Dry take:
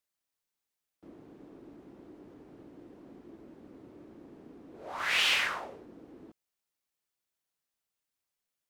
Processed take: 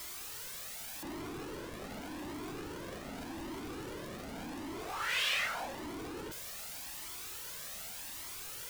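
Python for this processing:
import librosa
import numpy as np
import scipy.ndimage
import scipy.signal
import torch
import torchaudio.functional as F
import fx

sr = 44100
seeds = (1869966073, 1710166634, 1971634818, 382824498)

y = x + 0.5 * 10.0 ** (-29.0 / 20.0) * np.sign(x)
y = fx.comb_cascade(y, sr, direction='rising', hz=0.85)
y = y * 10.0 ** (-3.5 / 20.0)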